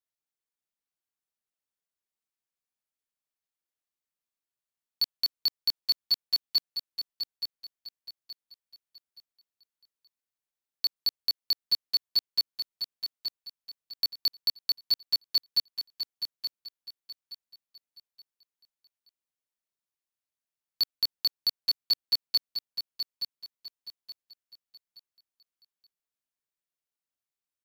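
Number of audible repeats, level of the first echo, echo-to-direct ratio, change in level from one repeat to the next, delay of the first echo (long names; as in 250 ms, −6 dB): 3, −8.0 dB, −7.5 dB, −10.0 dB, 873 ms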